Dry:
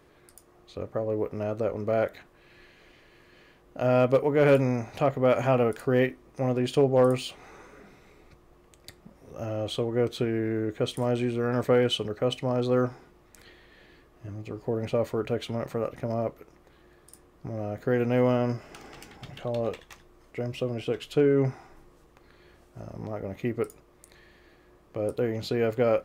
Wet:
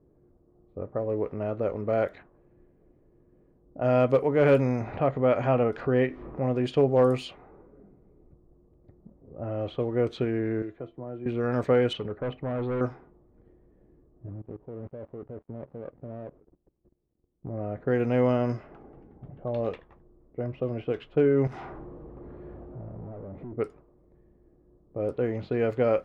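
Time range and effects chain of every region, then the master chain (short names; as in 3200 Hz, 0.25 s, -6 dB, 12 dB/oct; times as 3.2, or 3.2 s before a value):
4.81–6.56 upward compressor, threshold -25 dBFS + air absorption 130 m
10.62–11.26 resonator 340 Hz, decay 0.18 s, mix 80% + three-band squash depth 70%
11.93–12.81 hard clip -26.5 dBFS + air absorption 200 m
14.28–17.47 switching dead time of 0.27 ms + level quantiser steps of 19 dB
21.47–23.53 HPF 43 Hz + compressor 10:1, threshold -45 dBFS + sample leveller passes 5
whole clip: LPF 3000 Hz 6 dB/oct; low-pass opened by the level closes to 360 Hz, open at -22 dBFS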